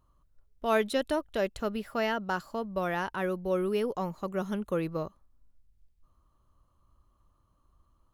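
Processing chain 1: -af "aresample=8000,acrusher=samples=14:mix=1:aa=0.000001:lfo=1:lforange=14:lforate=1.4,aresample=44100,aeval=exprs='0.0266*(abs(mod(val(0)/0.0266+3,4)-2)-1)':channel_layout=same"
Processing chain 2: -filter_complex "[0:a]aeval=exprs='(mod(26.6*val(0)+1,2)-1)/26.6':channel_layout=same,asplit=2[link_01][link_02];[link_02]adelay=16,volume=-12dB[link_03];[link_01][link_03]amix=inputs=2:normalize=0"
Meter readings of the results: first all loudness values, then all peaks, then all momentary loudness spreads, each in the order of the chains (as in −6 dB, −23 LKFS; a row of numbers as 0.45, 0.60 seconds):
−39.5, −34.0 LKFS; −31.5, −26.5 dBFS; 3, 4 LU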